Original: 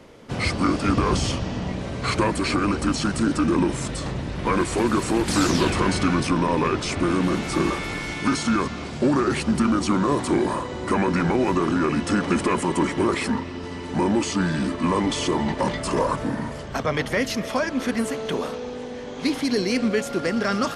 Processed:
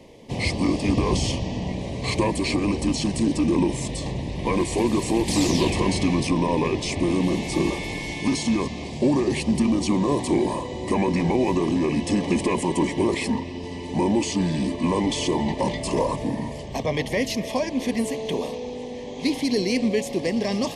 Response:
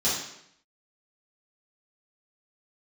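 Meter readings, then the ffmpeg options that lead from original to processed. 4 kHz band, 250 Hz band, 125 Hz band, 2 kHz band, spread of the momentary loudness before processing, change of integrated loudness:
0.0 dB, 0.0 dB, 0.0 dB, −4.0 dB, 7 LU, −0.5 dB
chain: -af "asuperstop=centerf=1400:order=4:qfactor=1.5"

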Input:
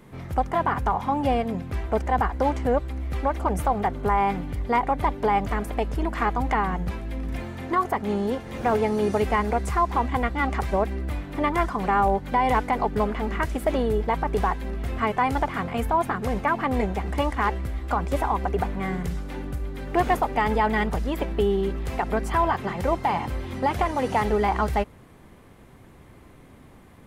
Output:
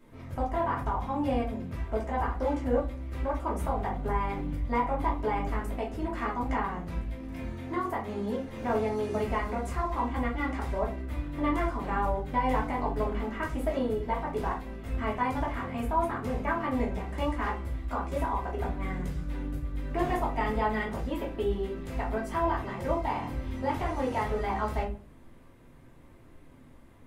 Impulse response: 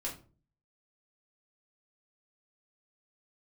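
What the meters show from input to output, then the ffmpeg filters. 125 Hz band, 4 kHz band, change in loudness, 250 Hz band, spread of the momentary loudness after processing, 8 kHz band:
−5.0 dB, −8.0 dB, −6.0 dB, −4.5 dB, 6 LU, −8.5 dB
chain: -filter_complex "[1:a]atrim=start_sample=2205[link_01];[0:a][link_01]afir=irnorm=-1:irlink=0,volume=-8dB"

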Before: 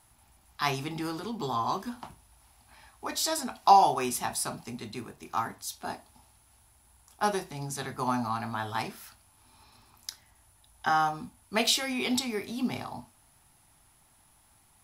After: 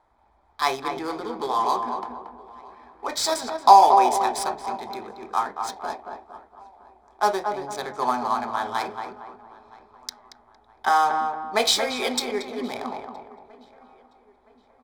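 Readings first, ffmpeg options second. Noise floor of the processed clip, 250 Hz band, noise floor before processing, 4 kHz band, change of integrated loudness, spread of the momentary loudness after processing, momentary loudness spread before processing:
−60 dBFS, −0.5 dB, −63 dBFS, +4.5 dB, +6.5 dB, 19 LU, 17 LU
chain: -filter_complex "[0:a]equalizer=frequency=125:width_type=o:width=1:gain=-12,equalizer=frequency=500:width_type=o:width=1:gain=11,equalizer=frequency=1000:width_type=o:width=1:gain=7,equalizer=frequency=2000:width_type=o:width=1:gain=3,equalizer=frequency=4000:width_type=o:width=1:gain=6,equalizer=frequency=8000:width_type=o:width=1:gain=8,asplit=2[link_01][link_02];[link_02]aecho=0:1:968|1936|2904:0.0794|0.0342|0.0147[link_03];[link_01][link_03]amix=inputs=2:normalize=0,adynamicsmooth=sensitivity=5.5:basefreq=1500,asuperstop=centerf=2800:order=4:qfactor=6.9,asplit=2[link_04][link_05];[link_05]adelay=229,lowpass=frequency=1600:poles=1,volume=-5dB,asplit=2[link_06][link_07];[link_07]adelay=229,lowpass=frequency=1600:poles=1,volume=0.41,asplit=2[link_08][link_09];[link_09]adelay=229,lowpass=frequency=1600:poles=1,volume=0.41,asplit=2[link_10][link_11];[link_11]adelay=229,lowpass=frequency=1600:poles=1,volume=0.41,asplit=2[link_12][link_13];[link_13]adelay=229,lowpass=frequency=1600:poles=1,volume=0.41[link_14];[link_06][link_08][link_10][link_12][link_14]amix=inputs=5:normalize=0[link_15];[link_04][link_15]amix=inputs=2:normalize=0,volume=-2.5dB"

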